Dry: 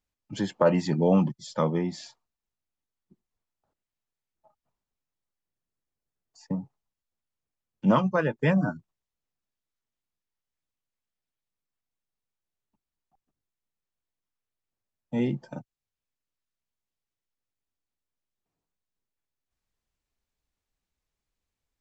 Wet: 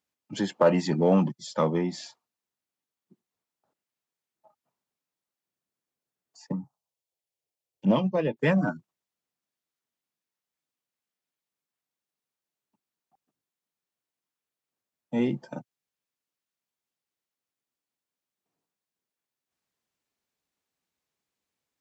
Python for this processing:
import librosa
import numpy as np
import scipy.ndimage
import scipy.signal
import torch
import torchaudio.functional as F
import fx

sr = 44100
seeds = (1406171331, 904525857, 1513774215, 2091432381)

p1 = scipy.signal.sosfilt(scipy.signal.butter(2, 170.0, 'highpass', fs=sr, output='sos'), x)
p2 = fx.env_phaser(p1, sr, low_hz=220.0, high_hz=1400.0, full_db=-24.0, at=(6.52, 8.37))
p3 = np.clip(p2, -10.0 ** (-23.5 / 20.0), 10.0 ** (-23.5 / 20.0))
y = p2 + (p3 * librosa.db_to_amplitude(-11.0))